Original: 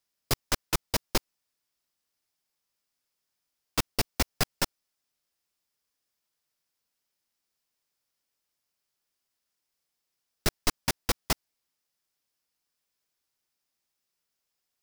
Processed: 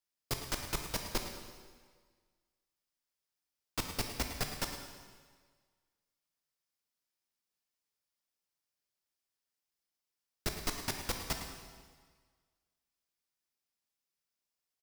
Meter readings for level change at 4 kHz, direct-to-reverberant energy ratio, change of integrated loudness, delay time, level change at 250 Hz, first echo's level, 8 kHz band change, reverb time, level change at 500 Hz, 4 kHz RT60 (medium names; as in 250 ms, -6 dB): -7.5 dB, 3.0 dB, -8.0 dB, 108 ms, -7.5 dB, -11.5 dB, -7.5 dB, 1.6 s, -7.5 dB, 1.5 s